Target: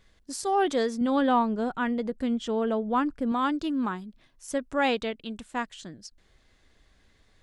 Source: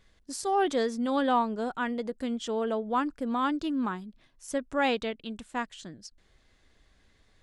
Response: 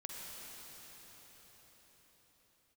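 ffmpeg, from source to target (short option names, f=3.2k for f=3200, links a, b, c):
-filter_complex "[0:a]asettb=1/sr,asplit=3[a][b][c];[a]atrim=end=1.014[d];[b]atrim=start=1.01:end=3.32,asetpts=PTS-STARTPTS,afade=t=in:d=0.004:c=qsin,afade=t=out:st=2.306:d=0.004:c=qsin,bass=f=250:g=6,treble=f=4k:g=-5[e];[c]atrim=start=3.316[f];[d][e]acrossfade=d=0.004:c1=hsin:c2=qsin[g];[g][f]acrossfade=d=0.004:c1=qsin:c2=hsin,volume=1.5dB"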